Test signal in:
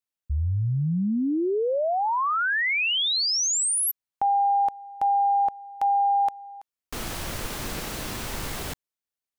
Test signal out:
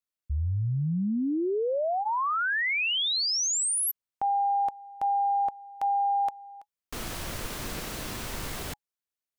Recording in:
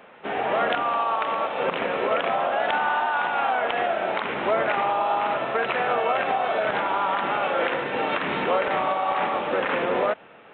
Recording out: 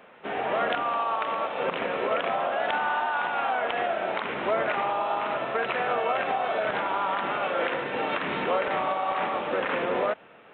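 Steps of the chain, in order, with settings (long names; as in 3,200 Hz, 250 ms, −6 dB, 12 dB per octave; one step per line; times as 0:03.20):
notch filter 830 Hz, Q 27
level −3 dB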